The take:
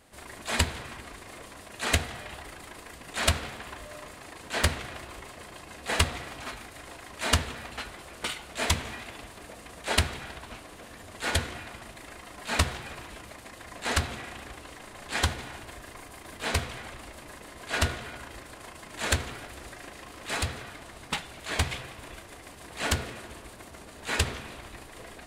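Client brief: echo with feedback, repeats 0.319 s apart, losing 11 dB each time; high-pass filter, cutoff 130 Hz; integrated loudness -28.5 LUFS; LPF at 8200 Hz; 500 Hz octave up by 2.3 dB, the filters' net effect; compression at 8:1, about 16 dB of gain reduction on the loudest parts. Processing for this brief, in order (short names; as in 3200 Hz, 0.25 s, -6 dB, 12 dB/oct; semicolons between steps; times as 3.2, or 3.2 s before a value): HPF 130 Hz; LPF 8200 Hz; bell 500 Hz +3 dB; compressor 8:1, threshold -37 dBFS; feedback echo 0.319 s, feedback 28%, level -11 dB; gain +13.5 dB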